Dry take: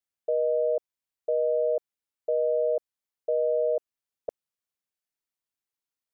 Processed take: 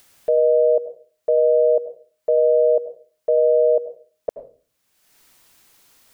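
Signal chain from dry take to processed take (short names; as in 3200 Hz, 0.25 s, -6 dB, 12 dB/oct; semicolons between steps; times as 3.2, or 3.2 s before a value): upward compressor, threshold -42 dBFS; reverb RT60 0.40 s, pre-delay 80 ms, DRR 11 dB; gain +8.5 dB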